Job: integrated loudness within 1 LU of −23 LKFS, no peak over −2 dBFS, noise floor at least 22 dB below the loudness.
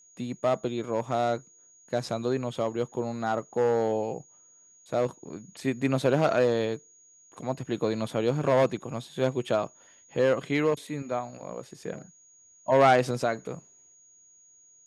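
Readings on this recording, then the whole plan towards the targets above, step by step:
interfering tone 6,700 Hz; level of the tone −55 dBFS; integrated loudness −28.0 LKFS; sample peak −9.0 dBFS; target loudness −23.0 LKFS
→ notch filter 6,700 Hz, Q 30
level +5 dB

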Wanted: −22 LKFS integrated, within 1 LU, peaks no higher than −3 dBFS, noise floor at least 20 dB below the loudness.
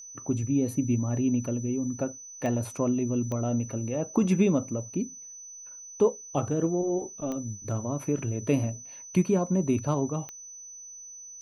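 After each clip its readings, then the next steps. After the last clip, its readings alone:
number of clicks 4; interfering tone 6,000 Hz; level of the tone −42 dBFS; integrated loudness −28.5 LKFS; sample peak −11.0 dBFS; target loudness −22.0 LKFS
→ click removal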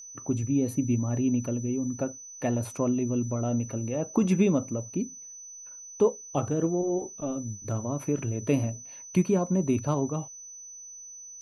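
number of clicks 0; interfering tone 6,000 Hz; level of the tone −42 dBFS
→ notch filter 6,000 Hz, Q 30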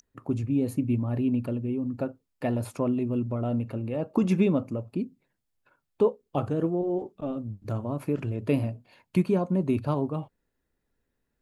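interfering tone none found; integrated loudness −28.5 LKFS; sample peak −11.5 dBFS; target loudness −22.0 LKFS
→ level +6.5 dB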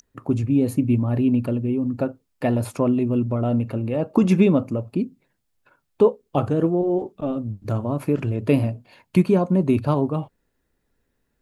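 integrated loudness −22.0 LKFS; sample peak −5.0 dBFS; background noise floor −73 dBFS

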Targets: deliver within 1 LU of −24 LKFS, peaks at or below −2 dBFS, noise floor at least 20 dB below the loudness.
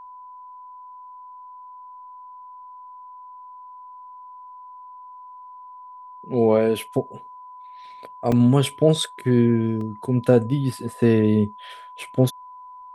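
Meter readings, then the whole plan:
number of dropouts 3; longest dropout 2.6 ms; interfering tone 1,000 Hz; level of the tone −39 dBFS; integrated loudness −21.0 LKFS; sample peak −4.0 dBFS; target loudness −24.0 LKFS
→ repair the gap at 0:08.32/0:09.81/0:12.03, 2.6 ms
notch filter 1,000 Hz, Q 30
level −3 dB

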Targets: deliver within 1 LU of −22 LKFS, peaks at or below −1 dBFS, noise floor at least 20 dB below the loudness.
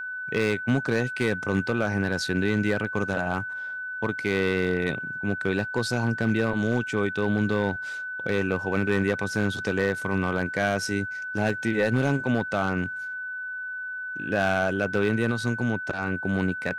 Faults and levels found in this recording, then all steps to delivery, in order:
share of clipped samples 0.7%; peaks flattened at −15.0 dBFS; interfering tone 1,500 Hz; level of the tone −31 dBFS; integrated loudness −26.5 LKFS; sample peak −15.0 dBFS; target loudness −22.0 LKFS
→ clipped peaks rebuilt −15 dBFS
notch filter 1,500 Hz, Q 30
level +4.5 dB

